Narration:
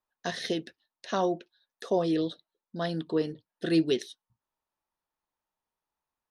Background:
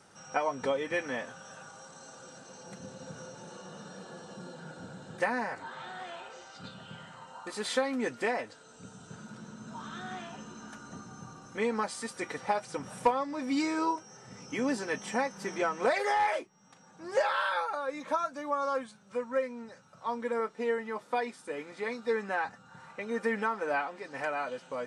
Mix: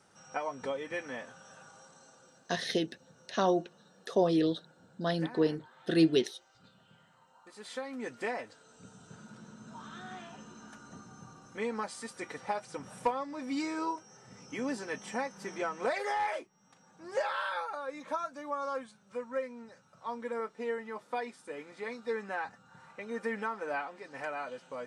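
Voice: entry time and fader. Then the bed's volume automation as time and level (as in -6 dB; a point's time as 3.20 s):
2.25 s, 0.0 dB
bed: 1.78 s -5.5 dB
2.74 s -15.5 dB
7.39 s -15.5 dB
8.24 s -4.5 dB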